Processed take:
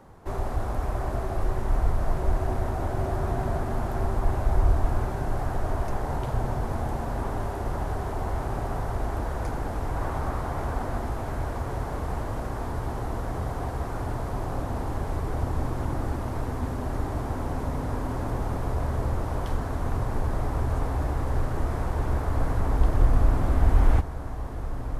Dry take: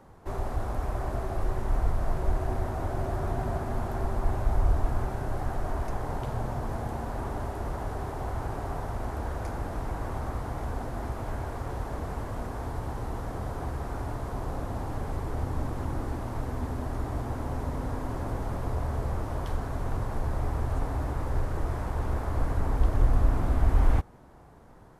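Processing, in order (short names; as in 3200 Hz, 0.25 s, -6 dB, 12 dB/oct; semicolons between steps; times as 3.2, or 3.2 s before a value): 9.96–10.98 bell 1200 Hz +3.5 dB 1.8 oct; diffused feedback echo 1.836 s, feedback 76%, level -11 dB; gain +2.5 dB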